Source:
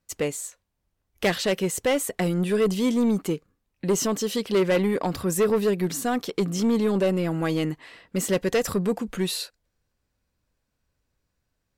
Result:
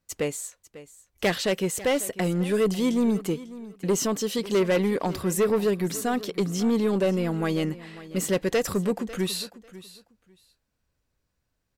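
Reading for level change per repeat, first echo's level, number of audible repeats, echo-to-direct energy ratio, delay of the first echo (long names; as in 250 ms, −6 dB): −14.5 dB, −17.0 dB, 2, −17.0 dB, 546 ms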